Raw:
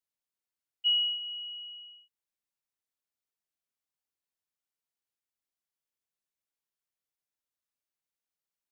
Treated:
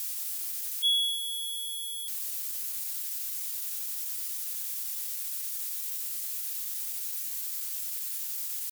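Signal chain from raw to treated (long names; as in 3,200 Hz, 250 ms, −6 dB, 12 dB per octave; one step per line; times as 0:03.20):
spike at every zero crossing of −26.5 dBFS
pitch shifter +2.5 semitones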